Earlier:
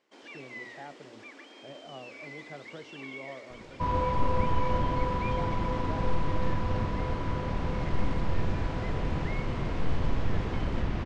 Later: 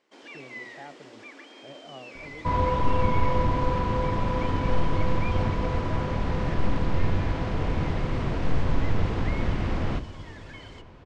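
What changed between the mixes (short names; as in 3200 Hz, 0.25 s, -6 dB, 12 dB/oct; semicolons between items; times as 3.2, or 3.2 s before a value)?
second sound: entry -1.35 s; reverb: on, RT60 2.7 s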